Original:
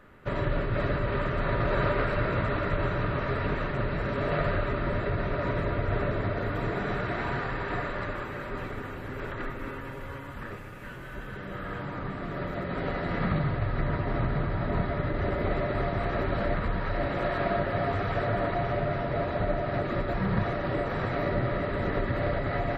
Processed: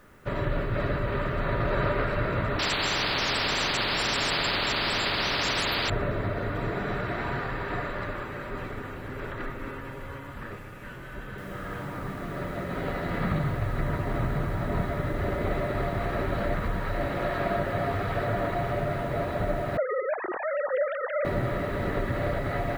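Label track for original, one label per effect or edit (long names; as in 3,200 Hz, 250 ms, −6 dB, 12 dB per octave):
2.590000	5.900000	every bin compressed towards the loudest bin 10 to 1
11.380000	11.380000	noise floor change −69 dB −59 dB
19.770000	21.250000	three sine waves on the formant tracks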